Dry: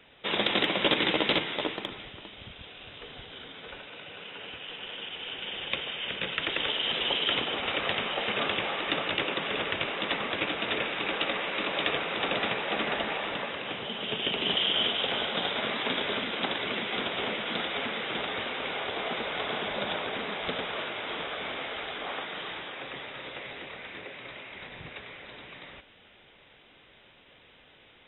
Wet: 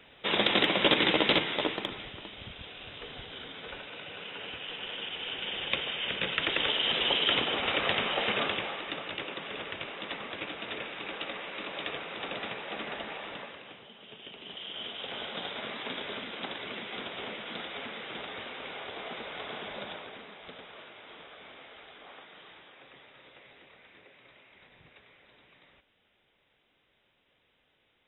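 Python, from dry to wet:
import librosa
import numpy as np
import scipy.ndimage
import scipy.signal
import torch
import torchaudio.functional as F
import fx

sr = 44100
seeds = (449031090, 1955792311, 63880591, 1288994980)

y = fx.gain(x, sr, db=fx.line((8.29, 1.0), (8.93, -8.0), (13.38, -8.0), (13.94, -17.0), (14.48, -17.0), (15.25, -7.5), (19.77, -7.5), (20.33, -14.5)))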